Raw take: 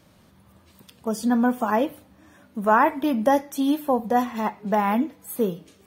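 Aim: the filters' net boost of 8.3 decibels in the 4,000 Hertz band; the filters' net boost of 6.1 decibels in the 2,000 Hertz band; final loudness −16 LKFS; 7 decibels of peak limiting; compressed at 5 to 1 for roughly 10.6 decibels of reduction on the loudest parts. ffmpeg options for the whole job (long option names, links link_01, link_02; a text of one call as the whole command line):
ffmpeg -i in.wav -af "equalizer=frequency=2000:width_type=o:gain=6.5,equalizer=frequency=4000:width_type=o:gain=8.5,acompressor=threshold=-23dB:ratio=5,volume=14.5dB,alimiter=limit=-5.5dB:level=0:latency=1" out.wav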